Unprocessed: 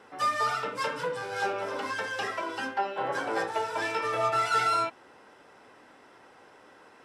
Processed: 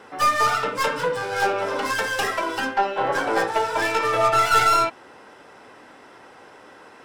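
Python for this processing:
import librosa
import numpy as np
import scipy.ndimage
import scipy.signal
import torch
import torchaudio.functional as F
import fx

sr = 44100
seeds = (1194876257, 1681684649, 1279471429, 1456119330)

y = fx.tracing_dist(x, sr, depth_ms=0.065)
y = fx.high_shelf(y, sr, hz=fx.line((1.84, 6200.0), (2.59, 11000.0)), db=9.5, at=(1.84, 2.59), fade=0.02)
y = y * 10.0 ** (8.0 / 20.0)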